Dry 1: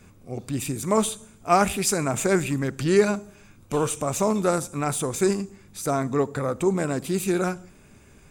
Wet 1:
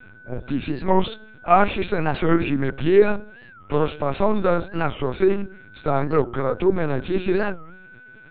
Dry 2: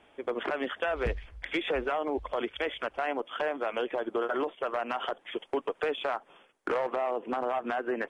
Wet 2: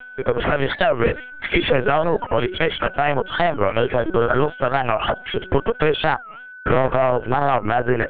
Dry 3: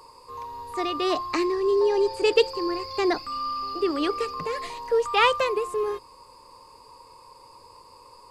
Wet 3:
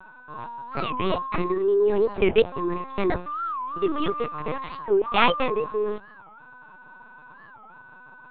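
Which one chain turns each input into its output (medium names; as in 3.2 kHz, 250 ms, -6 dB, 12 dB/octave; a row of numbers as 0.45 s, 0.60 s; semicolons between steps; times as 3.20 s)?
high-pass 72 Hz 24 dB/octave; de-hum 178.8 Hz, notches 4; whistle 1.5 kHz -49 dBFS; LPC vocoder at 8 kHz pitch kept; warped record 45 rpm, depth 250 cents; peak normalisation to -1.5 dBFS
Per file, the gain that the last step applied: +4.0 dB, +12.5 dB, +1.0 dB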